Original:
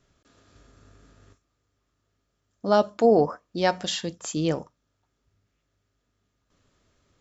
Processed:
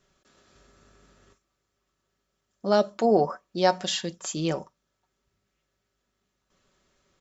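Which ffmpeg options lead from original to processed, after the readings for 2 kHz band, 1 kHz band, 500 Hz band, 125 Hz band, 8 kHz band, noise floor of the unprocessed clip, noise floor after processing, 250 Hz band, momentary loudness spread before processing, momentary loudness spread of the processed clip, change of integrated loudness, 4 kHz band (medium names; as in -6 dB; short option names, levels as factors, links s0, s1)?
-1.5 dB, 0.0 dB, -2.0 dB, -2.0 dB, no reading, -76 dBFS, -79 dBFS, -2.0 dB, 11 LU, 10 LU, -1.5 dB, +0.5 dB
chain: -af "lowshelf=f=280:g=-6,aecho=1:1:5.3:0.47"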